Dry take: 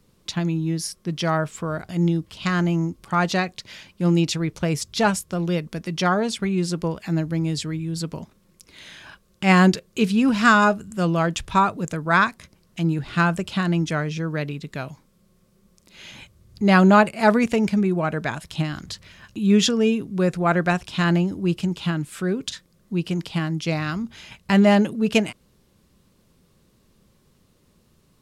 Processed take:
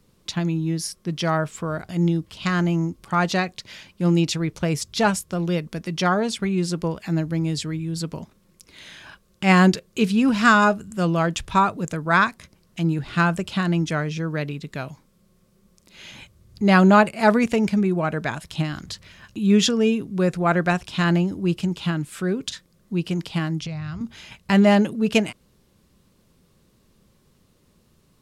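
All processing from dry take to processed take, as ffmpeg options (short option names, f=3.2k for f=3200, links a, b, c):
-filter_complex "[0:a]asettb=1/sr,asplit=3[a][b][c];[a]atrim=end=23.614[d];[b]atrim=start=23.61:end=24.01,asetpts=PTS-STARTPTS,afade=t=in:d=0.004:c=qsin,afade=t=out:st=0.396:d=0.004:c=qsin,lowpass=8k,lowshelf=f=170:t=q:w=3:g=11,acompressor=threshold=-28dB:ratio=8:attack=3.2:release=140:knee=1:detection=peak[e];[c]atrim=start=24.006[f];[d][e]acrossfade=d=0.004:c1=hsin:c2=qsin[g];[g][f]acrossfade=d=0.004:c1=qsin:c2=hsin"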